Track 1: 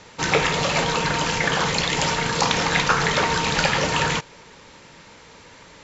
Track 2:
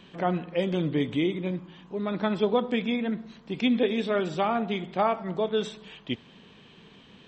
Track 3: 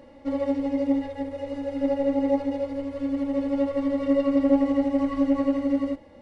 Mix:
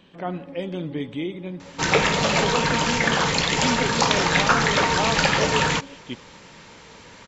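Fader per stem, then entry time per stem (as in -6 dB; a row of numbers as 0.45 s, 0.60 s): +0.5 dB, -3.0 dB, -17.0 dB; 1.60 s, 0.00 s, 0.00 s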